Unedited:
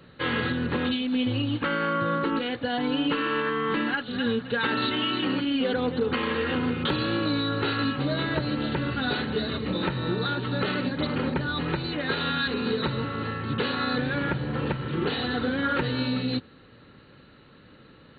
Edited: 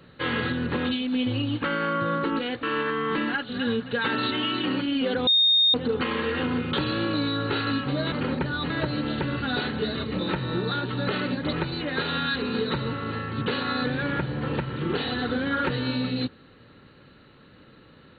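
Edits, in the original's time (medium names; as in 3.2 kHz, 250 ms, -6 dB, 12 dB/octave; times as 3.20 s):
2.63–3.22 s: delete
5.86 s: add tone 3.69 kHz -16 dBFS 0.47 s
11.07–11.65 s: move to 8.24 s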